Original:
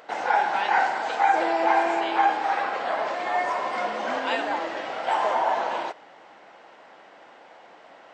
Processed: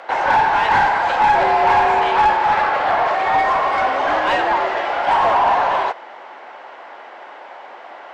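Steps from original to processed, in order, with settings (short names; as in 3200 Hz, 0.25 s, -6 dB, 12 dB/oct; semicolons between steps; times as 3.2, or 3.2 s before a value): frequency shift +51 Hz; overdrive pedal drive 18 dB, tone 1400 Hz, clips at -9 dBFS; gain +3.5 dB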